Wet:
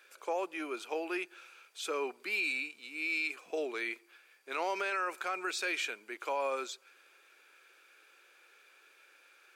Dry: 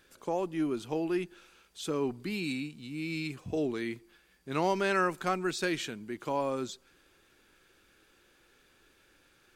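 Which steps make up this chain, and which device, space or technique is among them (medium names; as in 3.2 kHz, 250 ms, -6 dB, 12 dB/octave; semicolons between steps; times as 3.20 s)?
laptop speaker (high-pass 430 Hz 24 dB/octave; peaking EQ 1.4 kHz +5 dB 0.48 oct; peaking EQ 2.4 kHz +11 dB 0.2 oct; peak limiter -24.5 dBFS, peak gain reduction 10 dB)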